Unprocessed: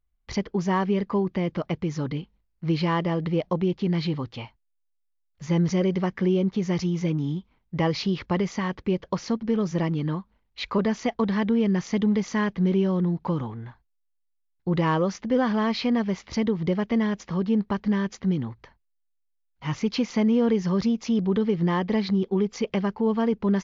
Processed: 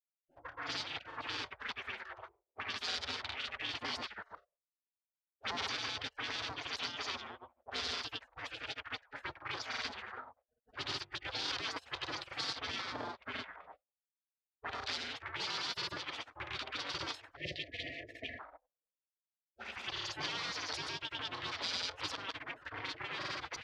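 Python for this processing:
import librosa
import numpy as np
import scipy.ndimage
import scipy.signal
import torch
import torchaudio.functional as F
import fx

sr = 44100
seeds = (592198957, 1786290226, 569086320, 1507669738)

y = fx.lower_of_two(x, sr, delay_ms=0.87)
y = scipy.signal.sosfilt(scipy.signal.butter(4, 100.0, 'highpass', fs=sr, output='sos'), y)
y = fx.hum_notches(y, sr, base_hz=50, count=9)
y = fx.spec_gate(y, sr, threshold_db=-30, keep='weak')
y = fx.dynamic_eq(y, sr, hz=2700.0, q=0.85, threshold_db=-56.0, ratio=4.0, max_db=-6)
y = fx.granulator(y, sr, seeds[0], grain_ms=100.0, per_s=20.0, spray_ms=100.0, spread_st=0)
y = 10.0 ** (-37.5 / 20.0) * np.tanh(y / 10.0 ** (-37.5 / 20.0))
y = fx.spec_erase(y, sr, start_s=17.36, length_s=1.04, low_hz=730.0, high_hz=1700.0)
y = fx.envelope_lowpass(y, sr, base_hz=400.0, top_hz=4700.0, q=2.4, full_db=-47.5, direction='up')
y = F.gain(torch.from_numpy(y), 8.0).numpy()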